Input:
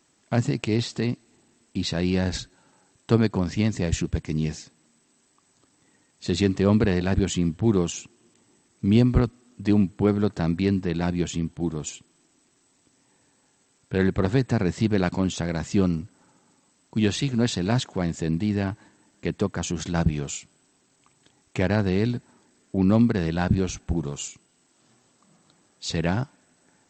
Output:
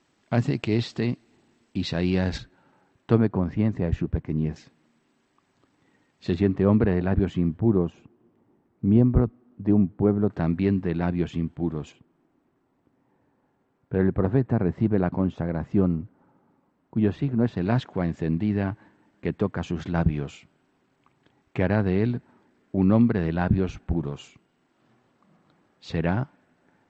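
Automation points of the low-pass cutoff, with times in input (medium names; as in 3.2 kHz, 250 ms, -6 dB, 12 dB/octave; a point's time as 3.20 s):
4 kHz
from 2.38 s 2.4 kHz
from 3.18 s 1.4 kHz
from 4.56 s 3 kHz
from 6.34 s 1.6 kHz
from 7.60 s 1 kHz
from 10.30 s 2.2 kHz
from 11.92 s 1.2 kHz
from 17.57 s 2.3 kHz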